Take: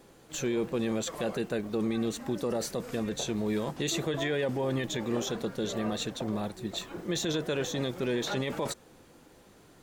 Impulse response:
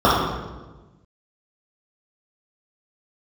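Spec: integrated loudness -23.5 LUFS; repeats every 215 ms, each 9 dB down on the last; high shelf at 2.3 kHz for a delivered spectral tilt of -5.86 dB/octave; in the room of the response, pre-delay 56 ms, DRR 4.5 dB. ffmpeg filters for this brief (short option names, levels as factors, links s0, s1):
-filter_complex "[0:a]highshelf=f=2300:g=-6,aecho=1:1:215|430|645|860:0.355|0.124|0.0435|0.0152,asplit=2[s0][s1];[1:a]atrim=start_sample=2205,adelay=56[s2];[s1][s2]afir=irnorm=-1:irlink=0,volume=0.0266[s3];[s0][s3]amix=inputs=2:normalize=0,volume=2.24"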